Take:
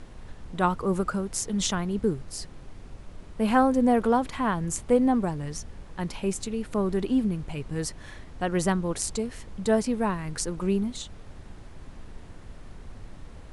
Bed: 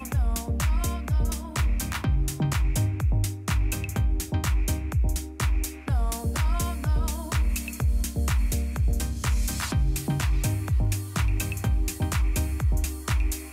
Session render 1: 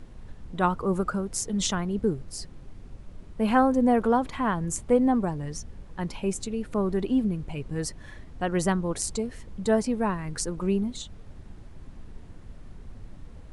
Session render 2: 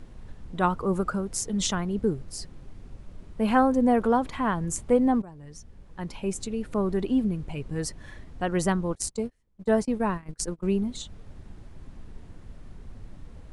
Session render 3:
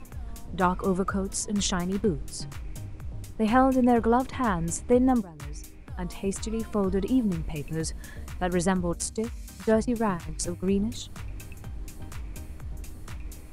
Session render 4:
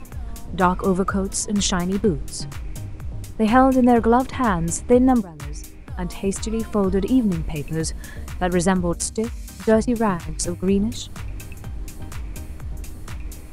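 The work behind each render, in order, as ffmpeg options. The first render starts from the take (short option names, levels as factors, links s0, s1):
-af "afftdn=nr=6:nf=-45"
-filter_complex "[0:a]asettb=1/sr,asplit=3[s0][s1][s2];[s0]atrim=end=8.954[s3];[s1]atrim=start=8.95:end=10.78,asetpts=PTS-STARTPTS,afade=t=in:d=0.004:c=qsin,afade=t=out:st=1.826:d=0.004:c=qsin,agate=range=0.0316:threshold=0.0251:ratio=16:release=100:detection=peak[s4];[s2]atrim=start=10.776[s5];[s3][s4]acrossfade=d=0.004:c1=hsin:c2=qsin[s6];[s6][s5]acrossfade=d=0.004:c1=qsin:c2=hsin,asplit=2[s7][s8];[s7]atrim=end=5.22,asetpts=PTS-STARTPTS,afade=t=out:st=5.216:d=0.004:c=hsin:silence=0.125893[s9];[s8]atrim=start=5.22,asetpts=PTS-STARTPTS,afade=t=in:d=1.3:silence=0.125893[s10];[s9][s10]concat=n=2:v=0:a=1"
-filter_complex "[1:a]volume=0.178[s0];[0:a][s0]amix=inputs=2:normalize=0"
-af "volume=2"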